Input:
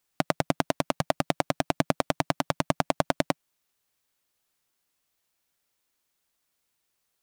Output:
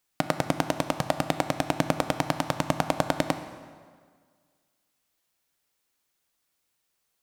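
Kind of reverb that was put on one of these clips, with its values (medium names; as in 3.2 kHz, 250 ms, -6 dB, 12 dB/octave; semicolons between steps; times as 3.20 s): plate-style reverb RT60 1.8 s, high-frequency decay 0.75×, DRR 9 dB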